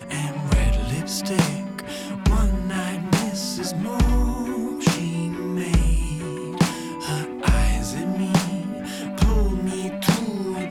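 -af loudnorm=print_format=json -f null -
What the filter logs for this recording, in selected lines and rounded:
"input_i" : "-24.0",
"input_tp" : "-7.7",
"input_lra" : "0.8",
"input_thresh" : "-34.0",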